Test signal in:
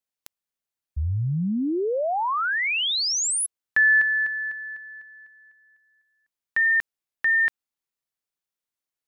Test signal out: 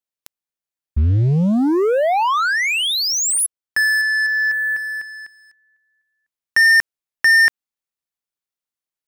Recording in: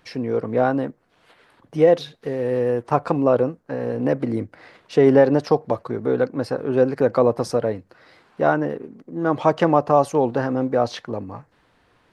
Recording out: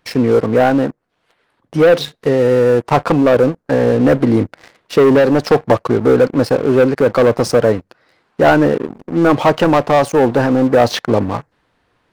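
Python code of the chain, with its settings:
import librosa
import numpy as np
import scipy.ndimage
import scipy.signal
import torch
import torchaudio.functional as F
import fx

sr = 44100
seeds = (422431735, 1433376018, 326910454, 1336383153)

y = fx.leveller(x, sr, passes=3)
y = fx.rider(y, sr, range_db=4, speed_s=0.5)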